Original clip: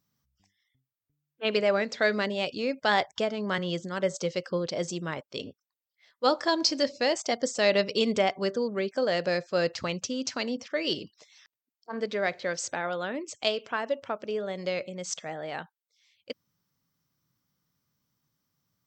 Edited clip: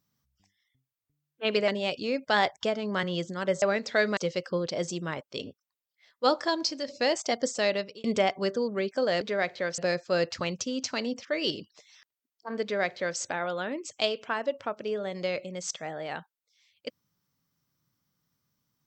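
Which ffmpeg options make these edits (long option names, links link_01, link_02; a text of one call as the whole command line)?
ffmpeg -i in.wav -filter_complex "[0:a]asplit=8[link_01][link_02][link_03][link_04][link_05][link_06][link_07][link_08];[link_01]atrim=end=1.682[link_09];[link_02]atrim=start=2.228:end=4.172[link_10];[link_03]atrim=start=1.678:end=2.232[link_11];[link_04]atrim=start=4.168:end=6.88,asetpts=PTS-STARTPTS,afade=type=out:start_time=2.162:duration=0.55:silence=0.334965[link_12];[link_05]atrim=start=6.88:end=8.04,asetpts=PTS-STARTPTS,afade=type=in:duration=0.004:curve=hsin:silence=0.334965,afade=type=out:start_time=0.63:duration=0.53[link_13];[link_06]atrim=start=8.04:end=9.212,asetpts=PTS-STARTPTS,afade=type=in:duration=0.004:curve=hsin[link_14];[link_07]atrim=start=12.048:end=12.622[link_15];[link_08]atrim=start=9.208[link_16];[link_09][link_10]acrossfade=duration=0.004:curve1=hsin:curve2=hsin[link_17];[link_17][link_11]acrossfade=duration=0.004:curve1=hsin:curve2=hsin[link_18];[link_12][link_13][link_14]concat=n=3:v=0:a=1[link_19];[link_18][link_19]acrossfade=duration=0.004:curve1=hsin:curve2=hsin[link_20];[link_20][link_15]acrossfade=duration=0.004:curve1=hsin:curve2=hsin[link_21];[link_21][link_16]acrossfade=duration=0.004:curve1=hsin:curve2=hsin" out.wav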